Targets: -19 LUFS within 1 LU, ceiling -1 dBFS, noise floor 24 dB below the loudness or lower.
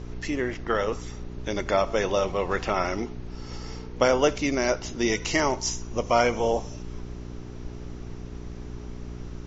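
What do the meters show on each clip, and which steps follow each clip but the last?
hum 60 Hz; highest harmonic 420 Hz; hum level -36 dBFS; noise floor -39 dBFS; noise floor target -50 dBFS; loudness -26.0 LUFS; peak level -6.5 dBFS; loudness target -19.0 LUFS
-> de-hum 60 Hz, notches 7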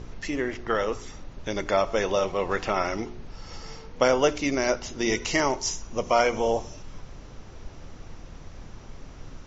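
hum not found; noise floor -44 dBFS; noise floor target -50 dBFS
-> noise print and reduce 6 dB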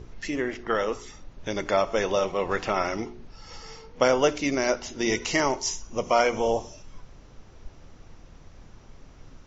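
noise floor -50 dBFS; loudness -26.0 LUFS; peak level -6.5 dBFS; loudness target -19.0 LUFS
-> trim +7 dB; peak limiter -1 dBFS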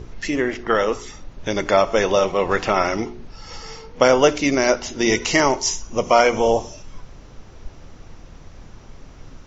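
loudness -19.0 LUFS; peak level -1.0 dBFS; noise floor -43 dBFS

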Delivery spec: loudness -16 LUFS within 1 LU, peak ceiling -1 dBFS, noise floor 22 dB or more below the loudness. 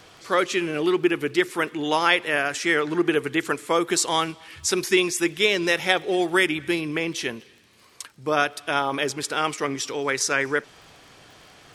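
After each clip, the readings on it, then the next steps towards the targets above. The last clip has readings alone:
tick rate 23 per s; loudness -23.0 LUFS; peak level -3.0 dBFS; loudness target -16.0 LUFS
-> de-click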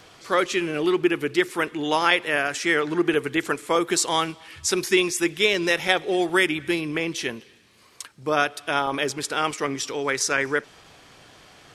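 tick rate 0.085 per s; loudness -23.0 LUFS; peak level -3.0 dBFS; loudness target -16.0 LUFS
-> trim +7 dB; peak limiter -1 dBFS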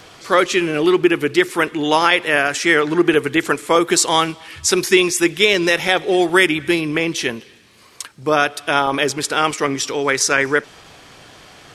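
loudness -16.5 LUFS; peak level -1.0 dBFS; noise floor -47 dBFS

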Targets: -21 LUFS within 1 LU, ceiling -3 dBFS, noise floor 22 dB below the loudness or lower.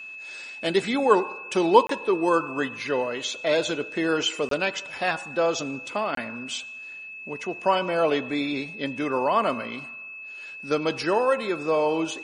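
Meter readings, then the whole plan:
dropouts 3; longest dropout 23 ms; steady tone 2.6 kHz; tone level -37 dBFS; loudness -25.0 LUFS; peak level -3.5 dBFS; loudness target -21.0 LUFS
-> interpolate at 1.87/4.49/6.15 s, 23 ms; band-stop 2.6 kHz, Q 30; trim +4 dB; peak limiter -3 dBFS

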